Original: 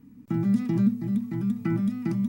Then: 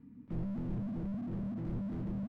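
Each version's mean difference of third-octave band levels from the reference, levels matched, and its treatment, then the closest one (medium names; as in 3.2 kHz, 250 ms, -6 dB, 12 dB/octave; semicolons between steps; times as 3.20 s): 6.5 dB: distance through air 370 m; on a send: delay 254 ms -4 dB; on the sum: slew-rate limiter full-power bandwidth 4.6 Hz; trim -3.5 dB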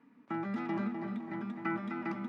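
9.5 dB: band-pass 760–2700 Hz; treble shelf 2.1 kHz -8 dB; tape echo 255 ms, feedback 51%, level -4.5 dB, low-pass 2.1 kHz; trim +8 dB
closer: first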